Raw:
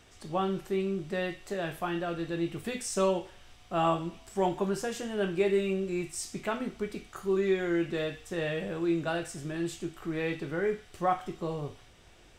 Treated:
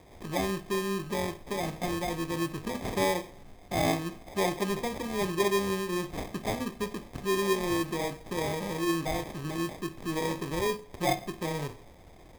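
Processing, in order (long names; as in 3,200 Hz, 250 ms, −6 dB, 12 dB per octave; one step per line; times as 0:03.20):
in parallel at +0.5 dB: downward compressor, threshold −39 dBFS, peak gain reduction 16 dB
on the sum: decimation without filtering 31×
four-comb reverb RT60 0.43 s, combs from 33 ms, DRR 16.5 dB
level −2 dB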